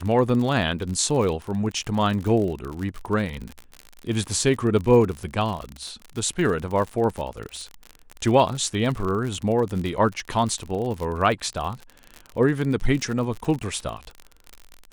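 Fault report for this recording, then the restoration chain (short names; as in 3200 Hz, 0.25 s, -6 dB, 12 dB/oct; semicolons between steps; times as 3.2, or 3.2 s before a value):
crackle 52/s -28 dBFS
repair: de-click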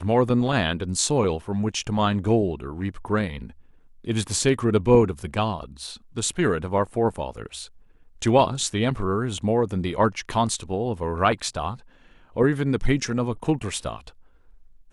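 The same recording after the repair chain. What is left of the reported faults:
none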